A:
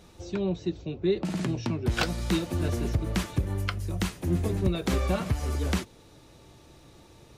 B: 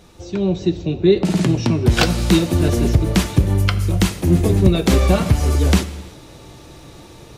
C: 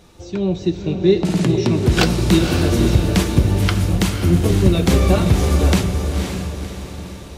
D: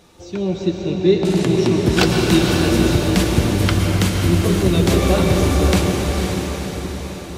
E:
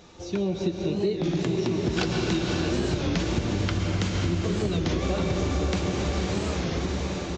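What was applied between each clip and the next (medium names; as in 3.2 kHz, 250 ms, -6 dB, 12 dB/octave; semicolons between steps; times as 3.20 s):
dynamic bell 1.4 kHz, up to -4 dB, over -47 dBFS, Q 0.84; level rider gain up to 7 dB; gated-style reverb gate 400 ms falling, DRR 12 dB; trim +5.5 dB
echo that smears into a reverb 527 ms, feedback 46%, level -5.5 dB; trim -1 dB
bass shelf 110 Hz -9 dB; plate-style reverb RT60 4.9 s, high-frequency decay 0.8×, pre-delay 95 ms, DRR 1.5 dB
compression 6:1, threshold -23 dBFS, peak gain reduction 13.5 dB; resampled via 16 kHz; warped record 33 1/3 rpm, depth 160 cents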